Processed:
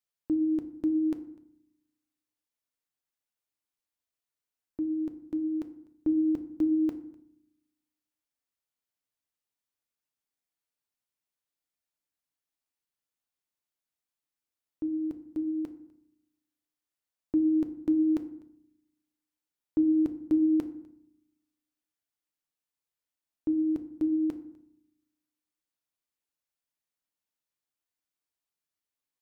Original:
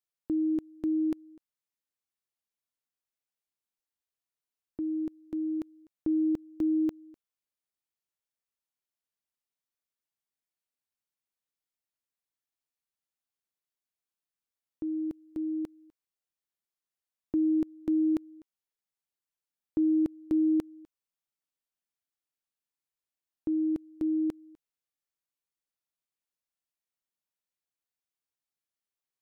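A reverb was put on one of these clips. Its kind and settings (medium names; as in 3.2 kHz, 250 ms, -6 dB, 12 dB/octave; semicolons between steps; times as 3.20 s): FDN reverb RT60 0.71 s, low-frequency decay 1.6×, high-frequency decay 0.55×, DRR 8.5 dB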